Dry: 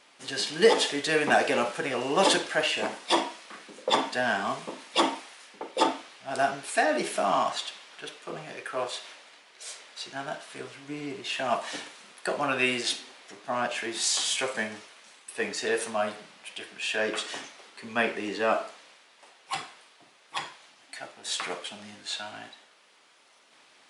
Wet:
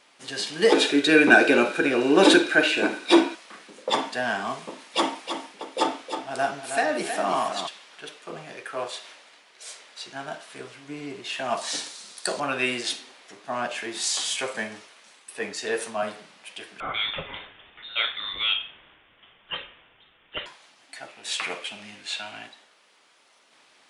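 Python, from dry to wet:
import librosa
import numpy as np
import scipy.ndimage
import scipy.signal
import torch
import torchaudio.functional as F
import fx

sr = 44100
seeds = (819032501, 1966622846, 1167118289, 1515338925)

y = fx.small_body(x, sr, hz=(320.0, 1500.0, 2400.0, 3800.0), ring_ms=25, db=15, at=(0.72, 3.35))
y = fx.echo_feedback(y, sr, ms=316, feedback_pct=25, wet_db=-8.0, at=(5.24, 7.66), fade=0.02)
y = fx.band_shelf(y, sr, hz=6200.0, db=12.0, octaves=1.7, at=(11.57, 12.4))
y = fx.band_widen(y, sr, depth_pct=40, at=(15.39, 16.03))
y = fx.freq_invert(y, sr, carrier_hz=3900, at=(16.8, 20.46))
y = fx.peak_eq(y, sr, hz=2500.0, db=9.0, octaves=0.59, at=(21.08, 22.47))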